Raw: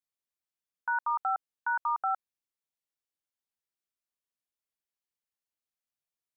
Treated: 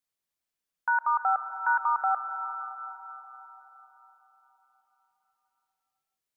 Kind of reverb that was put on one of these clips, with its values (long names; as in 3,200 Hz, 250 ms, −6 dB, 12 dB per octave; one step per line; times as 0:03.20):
comb and all-pass reverb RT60 4.6 s, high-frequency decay 0.65×, pre-delay 90 ms, DRR 9 dB
level +4.5 dB